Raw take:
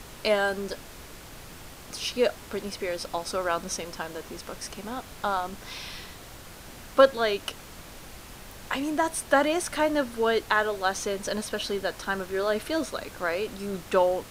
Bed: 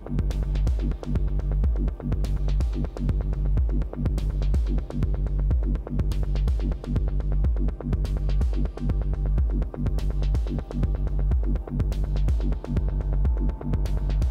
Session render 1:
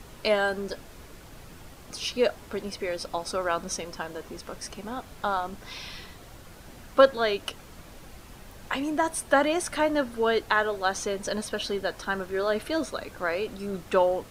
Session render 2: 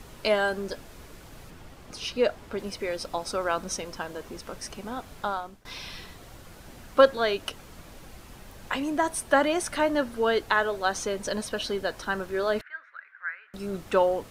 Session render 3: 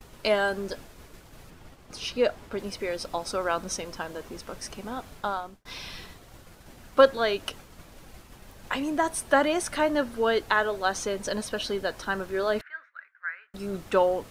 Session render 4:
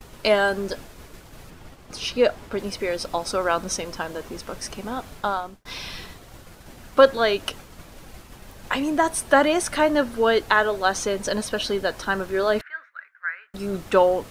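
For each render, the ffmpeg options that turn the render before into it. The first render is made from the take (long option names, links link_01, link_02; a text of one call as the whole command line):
ffmpeg -i in.wav -af "afftdn=noise_reduction=6:noise_floor=-45" out.wav
ffmpeg -i in.wav -filter_complex "[0:a]asettb=1/sr,asplit=3[link_01][link_02][link_03];[link_01]atrim=end=1.504[link_04];[link_02]atrim=start=1.5:end=2.59,asetpts=PTS-STARTPTS,afade=type=in:duration=0.004:curve=qsin,afade=type=out:start_time=1.086:duration=0.004:curve=qsin,highshelf=frequency=5300:gain=-7[link_05];[link_03]atrim=start=2.586[link_06];[link_04][link_05]acrossfade=duration=0.004:curve1=hsin:curve2=qsin[link_07];[link_07][link_06]acrossfade=duration=0.004:curve1=qsin:curve2=hsin,asettb=1/sr,asplit=3[link_08][link_09][link_10];[link_08]atrim=end=12.614[link_11];[link_09]atrim=start=12.61:end=13.54,asetpts=PTS-STARTPTS,afade=type=in:duration=0.004:curve=qsin,afade=type=out:start_time=0.926:duration=0.004:curve=qsin,asuperpass=centerf=1700:order=4:qfactor=2.9[link_12];[link_10]atrim=start=13.536[link_13];[link_11][link_12]acrossfade=duration=0.004:curve1=hsin:curve2=qsin[link_14];[link_14][link_13]acrossfade=duration=0.004:curve1=qsin:curve2=hsin,asplit=2[link_15][link_16];[link_15]atrim=end=5.65,asetpts=PTS-STARTPTS,afade=type=out:start_time=5.18:duration=0.47:silence=0.0891251[link_17];[link_16]atrim=start=5.65,asetpts=PTS-STARTPTS,afade=type=in:duration=0.004:curve=hsin:silence=0.0891251[link_18];[link_17][link_18]concat=n=2:v=0:a=1" out.wav
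ffmpeg -i in.wav -af "agate=range=-33dB:threshold=-42dB:ratio=3:detection=peak" out.wav
ffmpeg -i in.wav -af "volume=5dB,alimiter=limit=-3dB:level=0:latency=1" out.wav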